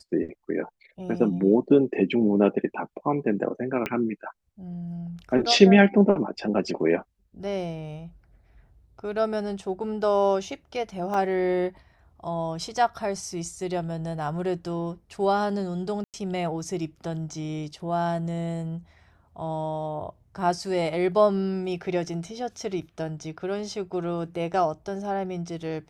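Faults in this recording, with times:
0:03.86: click −14 dBFS
0:11.14: drop-out 2.1 ms
0:16.04–0:16.14: drop-out 98 ms

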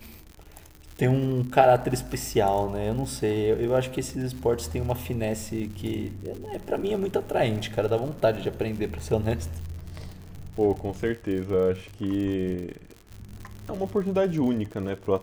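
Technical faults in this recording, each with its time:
surface crackle 91 per second −34 dBFS

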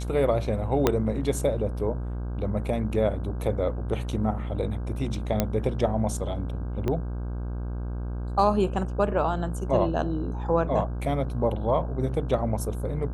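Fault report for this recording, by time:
mains buzz 60 Hz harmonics 27 −31 dBFS
0:00.87: click −6 dBFS
0:05.40: click −8 dBFS
0:06.88: click −16 dBFS

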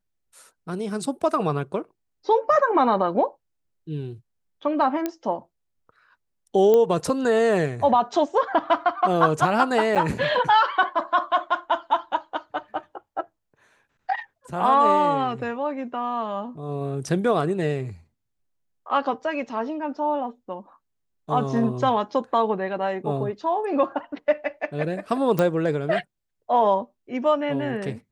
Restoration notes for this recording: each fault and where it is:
0:05.06: click −12 dBFS
0:06.74: click −10 dBFS
0:09.95–0:09.96: drop-out 7.8 ms
0:25.39: click −10 dBFS

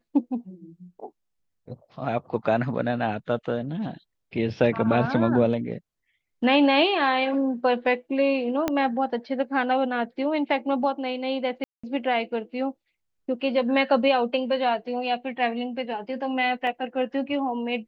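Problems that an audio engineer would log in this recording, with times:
0:08.68: click −10 dBFS
0:11.64–0:11.84: drop-out 195 ms
0:16.67: drop-out 2.1 ms

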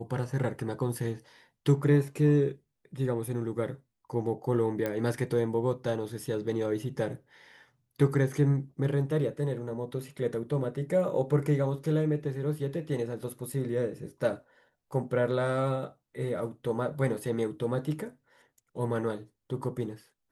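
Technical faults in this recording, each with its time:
0:04.86: click −18 dBFS

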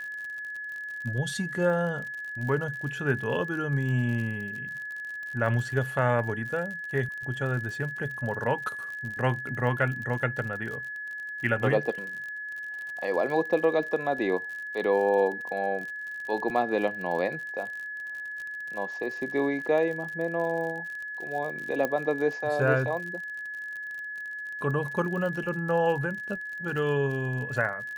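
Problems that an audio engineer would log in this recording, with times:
surface crackle 53 per second −35 dBFS
whistle 1,700 Hz −34 dBFS
0:21.85: click −15 dBFS

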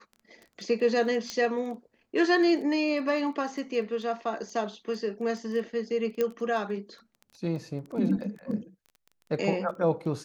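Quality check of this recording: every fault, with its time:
surface crackle 12 per second −37 dBFS
0:01.30: click −19 dBFS
0:06.21: click −15 dBFS

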